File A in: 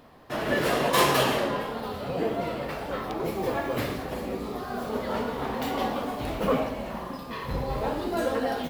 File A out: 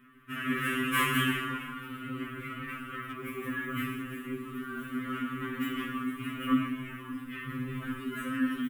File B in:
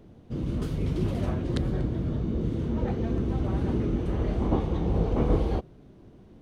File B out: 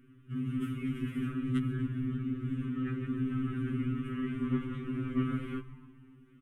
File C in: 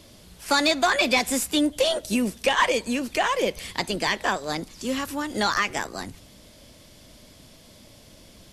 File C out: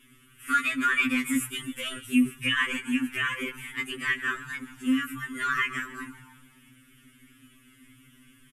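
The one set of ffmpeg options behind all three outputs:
-filter_complex "[0:a]firequalizer=gain_entry='entry(140,0);entry(200,8);entry(300,6);entry(510,-16);entry(800,-27);entry(1200,9);entry(2900,7);entry(4300,-18);entry(8700,4)':delay=0.05:min_phase=1,asplit=2[s0][s1];[s1]asplit=5[s2][s3][s4][s5][s6];[s2]adelay=140,afreqshift=-63,volume=0.141[s7];[s3]adelay=280,afreqshift=-126,volume=0.0822[s8];[s4]adelay=420,afreqshift=-189,volume=0.0473[s9];[s5]adelay=560,afreqshift=-252,volume=0.0275[s10];[s6]adelay=700,afreqshift=-315,volume=0.016[s11];[s7][s8][s9][s10][s11]amix=inputs=5:normalize=0[s12];[s0][s12]amix=inputs=2:normalize=0,afftfilt=real='re*2.45*eq(mod(b,6),0)':imag='im*2.45*eq(mod(b,6),0)':win_size=2048:overlap=0.75,volume=0.501"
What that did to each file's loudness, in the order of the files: -5.0 LU, -6.0 LU, -3.5 LU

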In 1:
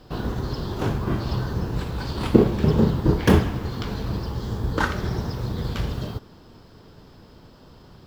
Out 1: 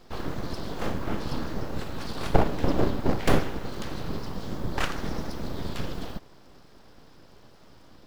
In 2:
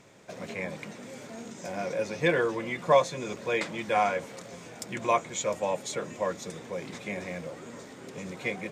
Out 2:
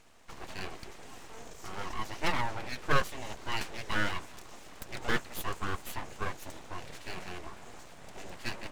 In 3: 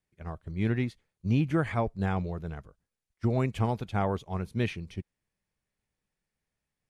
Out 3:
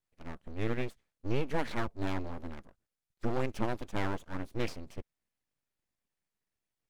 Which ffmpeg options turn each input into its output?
-af "aeval=exprs='abs(val(0))':c=same,volume=0.75"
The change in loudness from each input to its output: -6.5 LU, -6.5 LU, -6.5 LU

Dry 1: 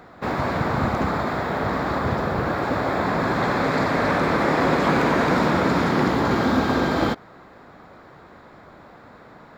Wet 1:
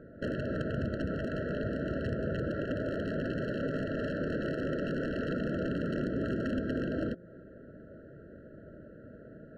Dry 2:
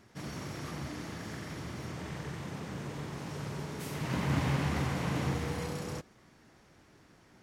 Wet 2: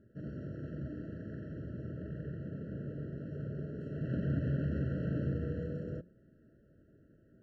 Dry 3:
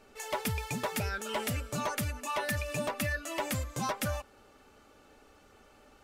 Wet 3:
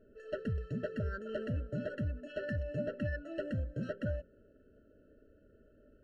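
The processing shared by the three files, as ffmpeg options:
-af "bandreject=f=175.8:t=h:w=4,bandreject=f=351.6:t=h:w=4,bandreject=f=527.4:t=h:w=4,acompressor=threshold=0.0447:ratio=8,aeval=exprs='(mod(11.9*val(0)+1,2)-1)/11.9':c=same,adynamicsmooth=sensitivity=1:basefreq=920,afftfilt=real='re*eq(mod(floor(b*sr/1024/650),2),0)':imag='im*eq(mod(floor(b*sr/1024/650),2),0)':win_size=1024:overlap=0.75"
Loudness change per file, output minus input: -12.5 LU, -2.5 LU, -4.5 LU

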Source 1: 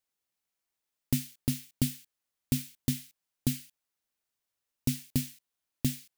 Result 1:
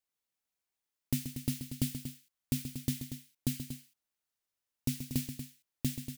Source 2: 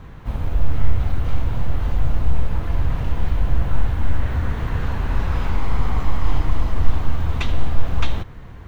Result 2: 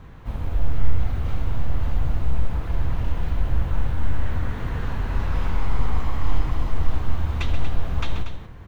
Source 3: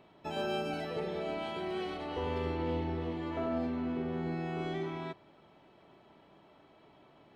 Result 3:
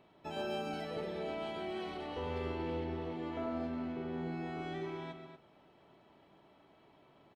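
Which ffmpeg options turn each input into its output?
-af "aecho=1:1:131.2|236.2:0.316|0.316,volume=0.631"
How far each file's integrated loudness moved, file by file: -4.0 LU, -3.0 LU, -3.5 LU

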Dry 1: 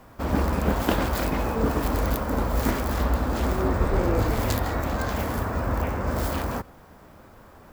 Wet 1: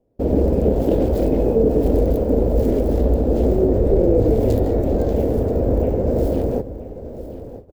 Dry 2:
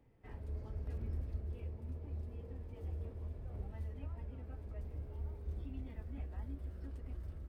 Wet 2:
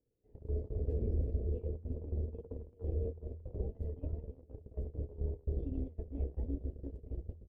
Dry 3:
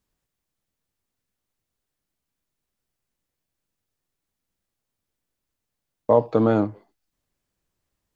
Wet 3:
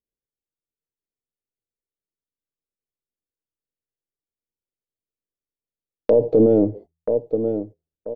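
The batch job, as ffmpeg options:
-filter_complex "[0:a]aeval=exprs='if(lt(val(0),0),0.708*val(0),val(0))':c=same,firequalizer=gain_entry='entry(200,0);entry(450,9);entry(1100,-24);entry(2800,-16)':delay=0.05:min_phase=1,asplit=2[s0][s1];[s1]aecho=0:1:981|1962|2943:0.178|0.064|0.023[s2];[s0][s2]amix=inputs=2:normalize=0,agate=range=0.0631:threshold=0.00708:ratio=16:detection=peak,bandreject=f=81.82:t=h:w=4,bandreject=f=163.64:t=h:w=4,alimiter=level_in=5.01:limit=0.891:release=50:level=0:latency=1,volume=0.501"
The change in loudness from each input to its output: +7.5 LU, +5.5 LU, +1.0 LU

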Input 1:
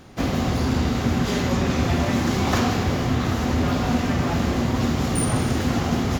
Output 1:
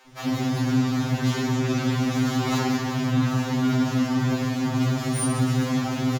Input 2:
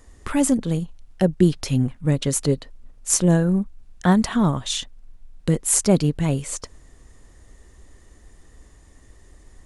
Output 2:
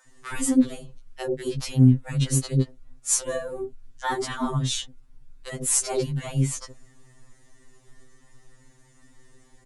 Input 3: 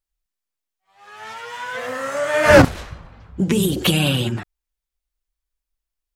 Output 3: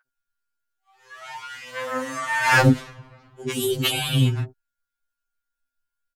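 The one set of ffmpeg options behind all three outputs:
-filter_complex "[0:a]aeval=exprs='val(0)+0.00282*sin(2*PI*1500*n/s)':c=same,acrossover=split=520[s0][s1];[s0]adelay=70[s2];[s2][s1]amix=inputs=2:normalize=0,afftfilt=real='re*2.45*eq(mod(b,6),0)':imag='im*2.45*eq(mod(b,6),0)':win_size=2048:overlap=0.75"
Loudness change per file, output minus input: -1.5 LU, -3.5 LU, -4.0 LU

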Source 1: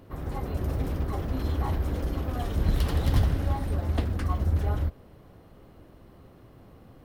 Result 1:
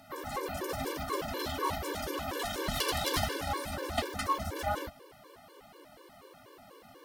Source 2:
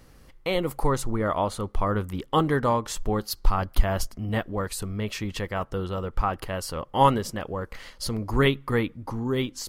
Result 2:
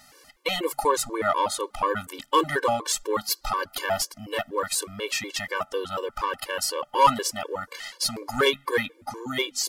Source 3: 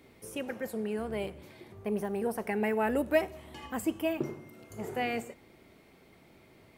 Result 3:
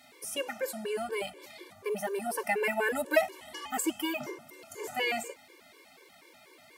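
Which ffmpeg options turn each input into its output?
-filter_complex "[0:a]bass=f=250:g=-4,treble=f=4000:g=8,aeval=exprs='0.531*(cos(1*acos(clip(val(0)/0.531,-1,1)))-cos(1*PI/2))+0.0266*(cos(3*acos(clip(val(0)/0.531,-1,1)))-cos(3*PI/2))+0.00668*(cos(6*acos(clip(val(0)/0.531,-1,1)))-cos(6*PI/2))':c=same,lowshelf=f=160:g=-6,asplit=2[s0][s1];[s1]highpass=f=720:p=1,volume=6.31,asoftclip=type=tanh:threshold=0.562[s2];[s0][s2]amix=inputs=2:normalize=0,lowpass=f=5600:p=1,volume=0.501,afftfilt=real='re*gt(sin(2*PI*4.1*pts/sr)*(1-2*mod(floor(b*sr/1024/300),2)),0)':imag='im*gt(sin(2*PI*4.1*pts/sr)*(1-2*mod(floor(b*sr/1024/300),2)),0)':win_size=1024:overlap=0.75"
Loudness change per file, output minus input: -5.0 LU, +1.0 LU, +1.0 LU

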